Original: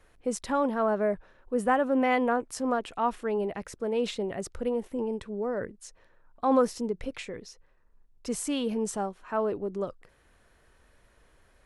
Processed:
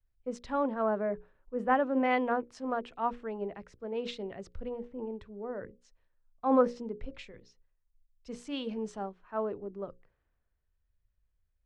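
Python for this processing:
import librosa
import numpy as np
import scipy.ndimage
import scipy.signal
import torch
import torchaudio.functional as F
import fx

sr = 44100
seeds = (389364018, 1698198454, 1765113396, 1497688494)

y = fx.air_absorb(x, sr, metres=160.0)
y = fx.hum_notches(y, sr, base_hz=60, count=9)
y = fx.band_widen(y, sr, depth_pct=70)
y = y * librosa.db_to_amplitude(-5.0)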